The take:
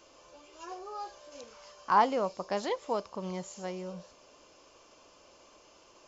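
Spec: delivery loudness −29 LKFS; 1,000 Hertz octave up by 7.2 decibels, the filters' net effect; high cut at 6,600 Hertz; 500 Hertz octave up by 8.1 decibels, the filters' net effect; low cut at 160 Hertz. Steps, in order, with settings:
high-pass filter 160 Hz
low-pass filter 6,600 Hz
parametric band 500 Hz +8 dB
parametric band 1,000 Hz +6 dB
level −3.5 dB

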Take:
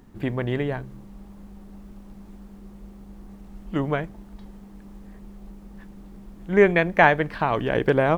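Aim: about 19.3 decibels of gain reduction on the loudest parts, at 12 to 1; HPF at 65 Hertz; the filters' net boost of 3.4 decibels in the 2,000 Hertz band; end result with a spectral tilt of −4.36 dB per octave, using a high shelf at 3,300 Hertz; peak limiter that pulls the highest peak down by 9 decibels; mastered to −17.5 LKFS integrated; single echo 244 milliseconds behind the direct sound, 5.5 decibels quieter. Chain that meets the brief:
high-pass filter 65 Hz
parametric band 2,000 Hz +6 dB
high-shelf EQ 3,300 Hz −6.5 dB
downward compressor 12 to 1, threshold −29 dBFS
brickwall limiter −25.5 dBFS
single-tap delay 244 ms −5.5 dB
level +22 dB

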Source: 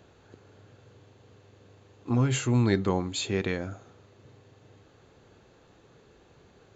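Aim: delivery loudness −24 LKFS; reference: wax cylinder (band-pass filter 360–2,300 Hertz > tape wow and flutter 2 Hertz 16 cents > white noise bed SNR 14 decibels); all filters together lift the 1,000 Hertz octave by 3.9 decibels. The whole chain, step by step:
band-pass filter 360–2,300 Hz
parametric band 1,000 Hz +5 dB
tape wow and flutter 2 Hz 16 cents
white noise bed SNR 14 dB
level +9 dB

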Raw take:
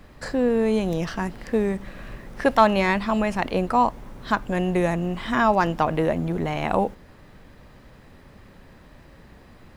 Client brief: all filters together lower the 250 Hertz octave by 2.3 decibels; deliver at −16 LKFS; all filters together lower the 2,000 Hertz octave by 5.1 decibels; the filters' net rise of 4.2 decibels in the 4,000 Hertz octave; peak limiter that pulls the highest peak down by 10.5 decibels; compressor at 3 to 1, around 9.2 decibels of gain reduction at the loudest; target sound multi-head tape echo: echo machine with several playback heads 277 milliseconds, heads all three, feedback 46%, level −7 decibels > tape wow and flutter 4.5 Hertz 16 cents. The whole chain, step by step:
parametric band 250 Hz −3 dB
parametric band 2,000 Hz −8.5 dB
parametric band 4,000 Hz +8.5 dB
downward compressor 3 to 1, threshold −24 dBFS
brickwall limiter −20.5 dBFS
echo machine with several playback heads 277 ms, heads all three, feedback 46%, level −7 dB
tape wow and flutter 4.5 Hz 16 cents
level +13 dB

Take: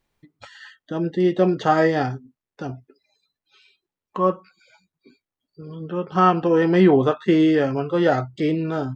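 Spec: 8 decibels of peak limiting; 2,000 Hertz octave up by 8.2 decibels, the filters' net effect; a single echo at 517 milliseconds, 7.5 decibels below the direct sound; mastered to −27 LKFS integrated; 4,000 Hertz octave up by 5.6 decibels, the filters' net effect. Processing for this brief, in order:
parametric band 2,000 Hz +9 dB
parametric band 4,000 Hz +3.5 dB
brickwall limiter −8 dBFS
single-tap delay 517 ms −7.5 dB
level −7 dB

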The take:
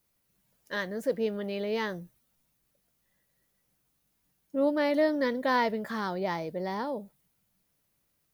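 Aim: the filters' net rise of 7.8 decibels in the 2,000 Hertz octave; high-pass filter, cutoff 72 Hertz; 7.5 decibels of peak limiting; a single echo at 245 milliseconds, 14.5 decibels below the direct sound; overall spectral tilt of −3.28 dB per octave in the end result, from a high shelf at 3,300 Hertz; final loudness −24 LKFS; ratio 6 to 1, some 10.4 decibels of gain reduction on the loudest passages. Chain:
high-pass filter 72 Hz
parametric band 2,000 Hz +8 dB
high-shelf EQ 3,300 Hz +4 dB
downward compressor 6 to 1, threshold −30 dBFS
brickwall limiter −25.5 dBFS
single-tap delay 245 ms −14.5 dB
level +12 dB

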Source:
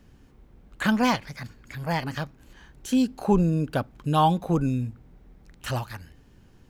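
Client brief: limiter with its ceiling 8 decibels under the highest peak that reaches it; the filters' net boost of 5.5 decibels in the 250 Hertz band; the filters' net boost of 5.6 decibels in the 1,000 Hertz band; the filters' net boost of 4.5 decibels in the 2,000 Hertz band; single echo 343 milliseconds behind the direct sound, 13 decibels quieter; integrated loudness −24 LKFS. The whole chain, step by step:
parametric band 250 Hz +6.5 dB
parametric band 1,000 Hz +6 dB
parametric band 2,000 Hz +3.5 dB
brickwall limiter −12.5 dBFS
single-tap delay 343 ms −13 dB

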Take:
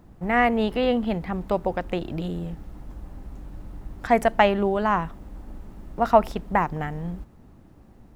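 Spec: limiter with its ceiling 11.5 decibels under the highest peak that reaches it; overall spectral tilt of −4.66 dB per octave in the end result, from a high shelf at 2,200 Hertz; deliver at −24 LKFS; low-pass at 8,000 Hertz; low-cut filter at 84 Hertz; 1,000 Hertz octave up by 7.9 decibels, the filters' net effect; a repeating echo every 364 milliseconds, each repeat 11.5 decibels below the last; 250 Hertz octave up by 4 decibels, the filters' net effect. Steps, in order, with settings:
high-pass filter 84 Hz
low-pass filter 8,000 Hz
parametric band 250 Hz +4.5 dB
parametric band 1,000 Hz +9 dB
high-shelf EQ 2,200 Hz +6 dB
brickwall limiter −8.5 dBFS
repeating echo 364 ms, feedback 27%, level −11.5 dB
level −2 dB

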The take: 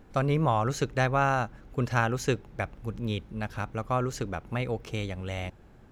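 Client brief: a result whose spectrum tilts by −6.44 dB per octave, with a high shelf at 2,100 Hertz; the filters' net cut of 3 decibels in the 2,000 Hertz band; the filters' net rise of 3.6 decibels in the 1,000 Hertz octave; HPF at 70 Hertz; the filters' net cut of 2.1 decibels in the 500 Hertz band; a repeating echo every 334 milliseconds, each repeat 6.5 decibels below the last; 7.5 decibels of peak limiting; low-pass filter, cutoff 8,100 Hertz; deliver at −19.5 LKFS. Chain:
high-pass filter 70 Hz
low-pass filter 8,100 Hz
parametric band 500 Hz −5 dB
parametric band 1,000 Hz +9 dB
parametric band 2,000 Hz −5.5 dB
high-shelf EQ 2,100 Hz −5.5 dB
brickwall limiter −17 dBFS
repeating echo 334 ms, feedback 47%, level −6.5 dB
level +11 dB

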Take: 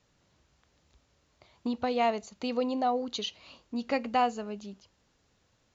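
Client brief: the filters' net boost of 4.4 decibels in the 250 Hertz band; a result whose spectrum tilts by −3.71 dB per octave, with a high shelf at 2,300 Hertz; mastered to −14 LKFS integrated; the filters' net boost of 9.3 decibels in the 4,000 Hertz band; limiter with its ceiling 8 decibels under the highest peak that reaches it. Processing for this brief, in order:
parametric band 250 Hz +4.5 dB
high-shelf EQ 2,300 Hz +4 dB
parametric band 4,000 Hz +8.5 dB
level +17.5 dB
brickwall limiter −3.5 dBFS

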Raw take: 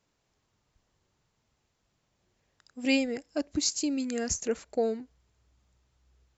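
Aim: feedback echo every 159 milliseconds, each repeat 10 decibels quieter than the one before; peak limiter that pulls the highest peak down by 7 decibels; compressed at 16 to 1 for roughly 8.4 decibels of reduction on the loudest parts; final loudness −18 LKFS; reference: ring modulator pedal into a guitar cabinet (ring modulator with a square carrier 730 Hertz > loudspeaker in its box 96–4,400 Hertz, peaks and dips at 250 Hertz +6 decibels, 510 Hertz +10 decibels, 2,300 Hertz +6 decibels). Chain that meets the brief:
downward compressor 16 to 1, threshold −30 dBFS
brickwall limiter −28.5 dBFS
repeating echo 159 ms, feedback 32%, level −10 dB
ring modulator with a square carrier 730 Hz
loudspeaker in its box 96–4,400 Hz, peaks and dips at 250 Hz +6 dB, 510 Hz +10 dB, 2,300 Hz +6 dB
level +16.5 dB

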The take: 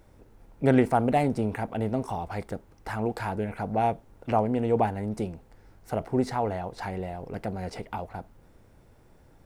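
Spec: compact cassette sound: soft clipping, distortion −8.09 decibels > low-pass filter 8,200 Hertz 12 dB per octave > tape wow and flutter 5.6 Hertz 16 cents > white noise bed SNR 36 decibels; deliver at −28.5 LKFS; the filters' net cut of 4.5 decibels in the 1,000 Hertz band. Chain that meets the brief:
parametric band 1,000 Hz −7 dB
soft clipping −25.5 dBFS
low-pass filter 8,200 Hz 12 dB per octave
tape wow and flutter 5.6 Hz 16 cents
white noise bed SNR 36 dB
level +6 dB

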